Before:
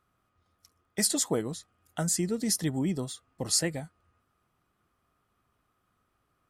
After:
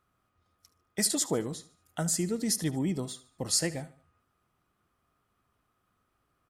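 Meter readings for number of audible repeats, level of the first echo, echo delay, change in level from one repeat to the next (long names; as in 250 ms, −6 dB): 3, −17.0 dB, 74 ms, −8.0 dB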